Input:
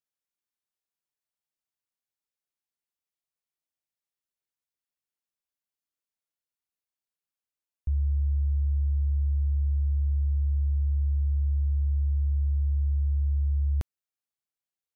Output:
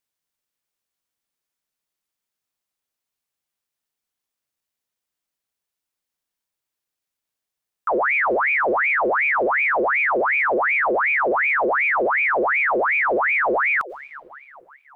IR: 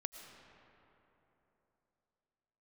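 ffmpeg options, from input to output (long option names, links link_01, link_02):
-filter_complex "[0:a]asplit=2[link_01][link_02];[1:a]atrim=start_sample=2205[link_03];[link_02][link_03]afir=irnorm=-1:irlink=0,volume=0.5dB[link_04];[link_01][link_04]amix=inputs=2:normalize=0,volume=21.5dB,asoftclip=hard,volume=-21.5dB,aeval=exprs='val(0)*sin(2*PI*1400*n/s+1400*0.7/2.7*sin(2*PI*2.7*n/s))':channel_layout=same,volume=6dB"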